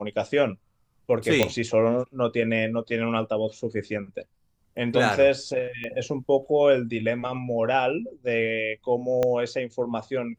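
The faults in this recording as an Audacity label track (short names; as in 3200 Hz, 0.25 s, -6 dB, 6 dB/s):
1.430000	1.430000	pop -6 dBFS
5.840000	5.840000	pop -23 dBFS
9.230000	9.230000	pop -12 dBFS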